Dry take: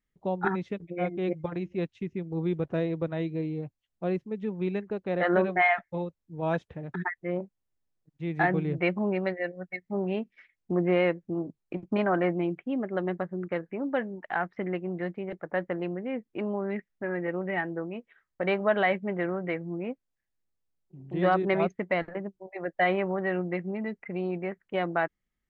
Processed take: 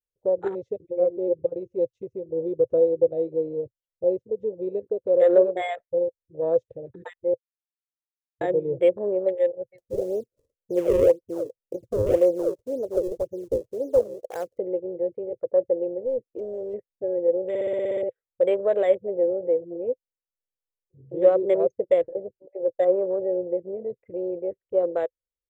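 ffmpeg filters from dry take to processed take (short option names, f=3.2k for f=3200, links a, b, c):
-filter_complex "[0:a]asettb=1/sr,asplit=3[a][b][c];[a]atrim=end=0.994[d];[b]atrim=start=0.99:end=1.57,asetpts=PTS-STARTPTS,afade=t=in:d=0.004:c=qsin,afade=t=out:st=0.576:d=0.004:c=qsin,highshelf=f=3.3k:g=-11[e];[c]atrim=start=1.566[f];[d][e]acrossfade=d=0.004:c1=hsin:c2=qsin[g];[g][f]acrossfade=d=0.004:c1=qsin:c2=hsin,asettb=1/sr,asplit=3[h][i][j];[h]atrim=end=9.784[k];[i]atrim=start=9.78:end=14.58,asetpts=PTS-STARTPTS,afade=t=in:d=0.004:c=qsin,afade=t=out:st=4.796:d=0.004:c=qsin,acrusher=samples=34:mix=1:aa=0.000001:lfo=1:lforange=54.4:lforate=1.9[l];[j]atrim=start=14.576[m];[k][l]acrossfade=d=0.004:c1=hsin:c2=qsin[n];[n][m]acrossfade=d=0.004:c1=qsin:c2=hsin,asettb=1/sr,asplit=3[o][p][q];[o]atrim=end=16.034[r];[p]atrim=start=16.03:end=16.74,asetpts=PTS-STARTPTS,afade=t=in:d=0.004:c=qsin,afade=t=out:st=0.706:d=0.004:c=qsin,asoftclip=type=hard:threshold=-30.5dB[s];[q]atrim=start=16.736[t];[r][s]acrossfade=d=0.004:c1=hsin:c2=qsin[u];[u][t]acrossfade=d=0.004:c1=qsin:c2=hsin,asettb=1/sr,asplit=3[v][w][x];[v]atrim=end=22.034[y];[w]atrim=start=22.03:end=23.9,asetpts=PTS-STARTPTS,afade=t=in:d=0.004:c=qsin,afade=t=out:st=1.866:d=0.004:c=qsin,lowpass=f=1.4k:p=1[z];[x]atrim=start=23.896[aa];[y][z]acrossfade=d=0.004:c1=hsin:c2=qsin[ab];[ab][aa]acrossfade=d=0.004:c1=qsin:c2=hsin,asplit=13[ac][ad][ae][af][ag][ah][ai][aj][ak][al][am][an][ao];[ac]atrim=end=7.34,asetpts=PTS-STARTPTS,afade=t=out:st=7.336:d=0.004:c=hsin[ap];[ad]atrim=start=7.34:end=8.41,asetpts=PTS-STARTPTS,volume=0[aq];[ae]atrim=start=8.41:end=17.552,asetpts=PTS-STARTPTS,afade=t=in:d=0.004:c=hsin[ar];[af]atrim=start=17.488:end=17.552[as];[ag]atrim=start=17.488:end=17.552[at];[ah]atrim=start=17.488:end=17.552[au];[ai]atrim=start=17.488:end=17.552[av];[aj]atrim=start=17.488:end=17.552[aw];[ak]atrim=start=17.488:end=17.552[ax];[al]atrim=start=17.488:end=17.552[ay];[am]atrim=start=17.488:end=17.552[az];[an]atrim=start=17.488:end=17.552[ba];[ao]atrim=start=18.088[bb];[ap][aq][ar]concat=n=3:v=0:a=1[bc];[bc][as]acrossfade=d=0.004:c1=hsin:c2=hsin[bd];[bd][at]acrossfade=d=0.004:c1=hsin:c2=hsin[be];[be][au]acrossfade=d=0.004:c1=hsin:c2=hsin[bf];[bf][av]acrossfade=d=0.004:c1=hsin:c2=hsin[bg];[bg][aw]acrossfade=d=0.004:c1=hsin:c2=hsin[bh];[bh][ax]acrossfade=d=0.004:c1=hsin:c2=hsin[bi];[bi][ay]acrossfade=d=0.004:c1=hsin:c2=hsin[bj];[bj][az]acrossfade=d=0.004:c1=hsin:c2=hsin[bk];[bk][ba]acrossfade=d=0.004:c1=hsin:c2=hsin[bl];[bl][bb]acrossfade=d=0.004:c1=hsin:c2=hsin,afwtdn=0.0251,firequalizer=gain_entry='entry(120,0);entry(170,-17);entry(510,14);entry(730,-8);entry(1400,-15);entry(6200,3)':delay=0.05:min_phase=1,volume=1.5dB"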